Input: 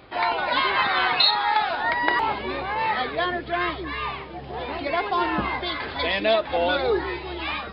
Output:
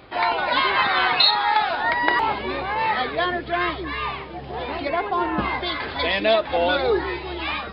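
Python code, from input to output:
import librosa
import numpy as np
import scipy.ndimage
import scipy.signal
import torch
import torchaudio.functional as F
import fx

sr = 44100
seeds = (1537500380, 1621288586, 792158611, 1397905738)

y = fx.lowpass(x, sr, hz=fx.line((4.88, 2000.0), (5.37, 1100.0)), slope=6, at=(4.88, 5.37), fade=0.02)
y = y * 10.0 ** (2.0 / 20.0)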